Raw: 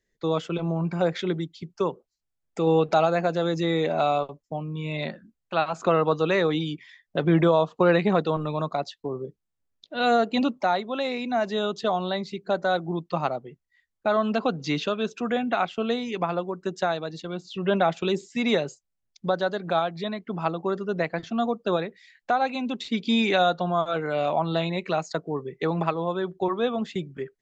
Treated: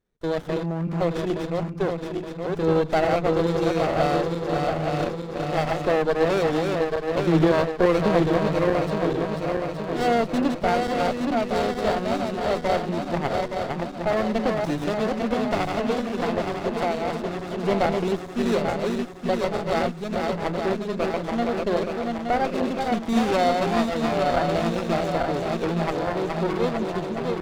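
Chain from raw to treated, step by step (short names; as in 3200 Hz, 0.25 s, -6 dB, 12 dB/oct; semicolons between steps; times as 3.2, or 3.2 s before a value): regenerating reverse delay 0.435 s, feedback 75%, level -3.5 dB; running maximum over 17 samples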